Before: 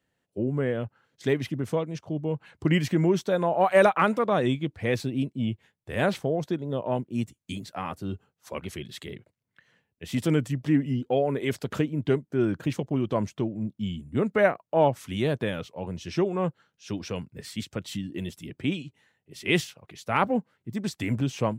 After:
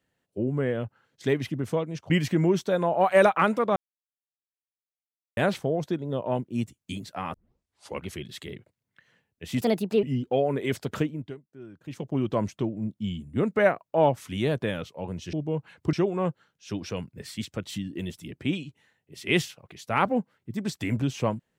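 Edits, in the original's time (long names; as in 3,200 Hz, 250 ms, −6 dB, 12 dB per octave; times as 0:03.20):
0:02.10–0:02.70: move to 0:16.12
0:04.36–0:05.97: silence
0:07.94: tape start 0.65 s
0:10.21–0:10.82: play speed 145%
0:11.78–0:12.97: duck −20 dB, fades 0.36 s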